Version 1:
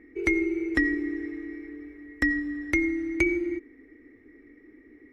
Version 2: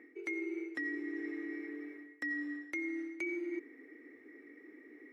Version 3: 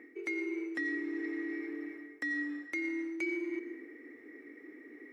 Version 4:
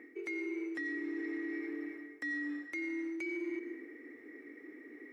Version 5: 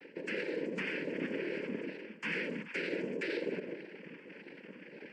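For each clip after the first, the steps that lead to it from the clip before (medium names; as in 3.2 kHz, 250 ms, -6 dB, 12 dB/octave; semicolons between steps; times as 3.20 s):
reverse; compression 12:1, threshold -34 dBFS, peak gain reduction 16.5 dB; reverse; high-pass 350 Hz 12 dB/octave; trim +1 dB
in parallel at -6 dB: saturation -37 dBFS, distortion -13 dB; on the sum: reverberation RT60 1.0 s, pre-delay 109 ms, DRR 10.5 dB
peak limiter -31.5 dBFS, peak gain reduction 6 dB
wow and flutter 140 cents; noise-vocoded speech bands 8; trim +1.5 dB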